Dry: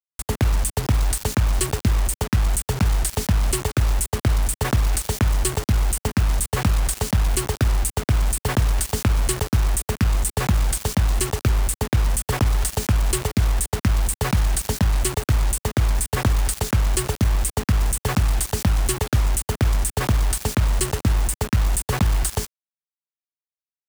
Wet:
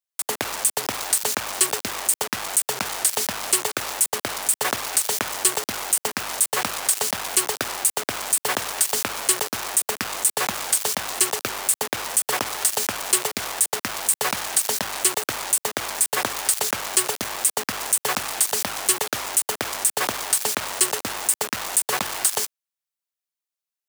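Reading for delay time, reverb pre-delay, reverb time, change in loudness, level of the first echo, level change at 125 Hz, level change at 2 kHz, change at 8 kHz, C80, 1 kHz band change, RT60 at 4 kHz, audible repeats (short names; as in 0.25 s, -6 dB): none, none, none, 0.0 dB, none, -24.5 dB, +3.5 dB, +6.5 dB, none, +2.5 dB, none, none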